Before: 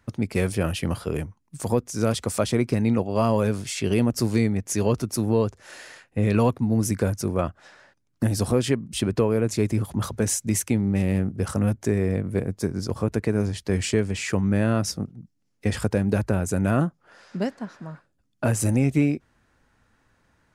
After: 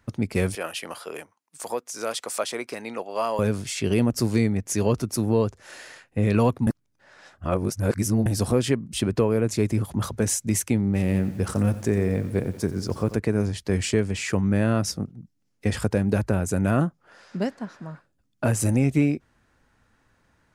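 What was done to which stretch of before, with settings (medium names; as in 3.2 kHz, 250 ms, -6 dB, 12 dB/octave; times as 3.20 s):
0.55–3.39 s: high-pass 590 Hz
6.67–8.26 s: reverse
10.85–13.16 s: bit-crushed delay 89 ms, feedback 55%, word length 7-bit, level -14 dB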